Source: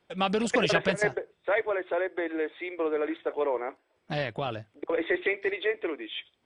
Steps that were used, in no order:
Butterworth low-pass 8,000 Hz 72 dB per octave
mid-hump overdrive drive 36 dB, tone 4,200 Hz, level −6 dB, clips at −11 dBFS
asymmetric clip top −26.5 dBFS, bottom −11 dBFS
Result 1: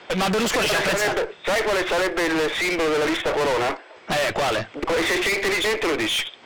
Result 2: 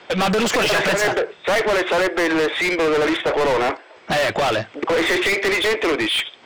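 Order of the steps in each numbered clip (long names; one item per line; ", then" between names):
Butterworth low-pass, then mid-hump overdrive, then asymmetric clip
asymmetric clip, then Butterworth low-pass, then mid-hump overdrive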